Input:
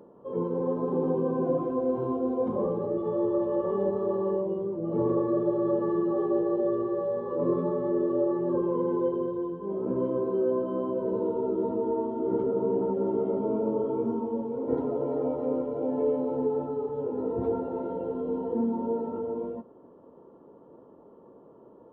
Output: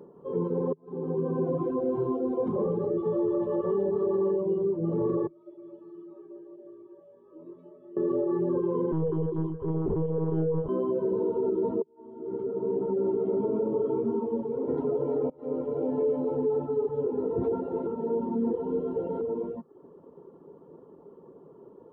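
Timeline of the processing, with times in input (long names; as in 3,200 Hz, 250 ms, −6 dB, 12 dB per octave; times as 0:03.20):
0:00.73–0:01.54: fade in
0:05.27–0:07.97: stiff-string resonator 310 Hz, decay 0.33 s, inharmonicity 0.002
0:08.92–0:10.69: one-pitch LPC vocoder at 8 kHz 160 Hz
0:11.82–0:13.46: fade in
0:15.30–0:15.71: fade in, from −19.5 dB
0:17.87–0:19.21: reverse
whole clip: reverb reduction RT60 0.51 s; thirty-one-band graphic EQ 160 Hz +9 dB, 400 Hz +8 dB, 630 Hz −4 dB; brickwall limiter −19.5 dBFS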